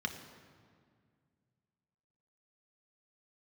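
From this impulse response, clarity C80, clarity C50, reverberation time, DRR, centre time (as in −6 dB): 10.0 dB, 8.5 dB, 2.0 s, 4.5 dB, 24 ms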